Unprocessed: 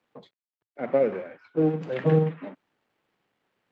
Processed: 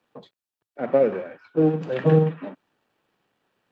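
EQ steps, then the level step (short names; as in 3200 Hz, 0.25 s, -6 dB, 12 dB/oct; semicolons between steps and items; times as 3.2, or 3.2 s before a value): notch 2100 Hz, Q 9.2; +3.5 dB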